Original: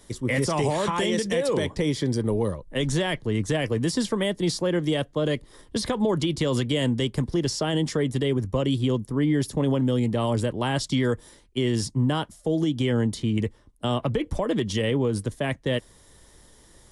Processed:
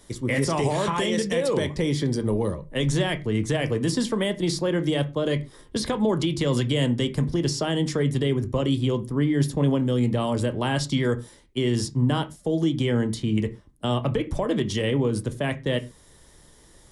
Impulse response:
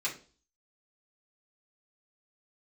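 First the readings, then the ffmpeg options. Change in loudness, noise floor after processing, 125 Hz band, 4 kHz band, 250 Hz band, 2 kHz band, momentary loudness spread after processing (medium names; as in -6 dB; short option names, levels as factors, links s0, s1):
+0.5 dB, -53 dBFS, +1.5 dB, 0.0 dB, +0.5 dB, +0.5 dB, 4 LU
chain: -filter_complex "[0:a]asplit=2[s0][s1];[s1]bass=f=250:g=10,treble=f=4000:g=-10[s2];[1:a]atrim=start_sample=2205,afade=t=out:st=0.16:d=0.01,atrim=end_sample=7497,adelay=16[s3];[s2][s3]afir=irnorm=-1:irlink=0,volume=0.188[s4];[s0][s4]amix=inputs=2:normalize=0"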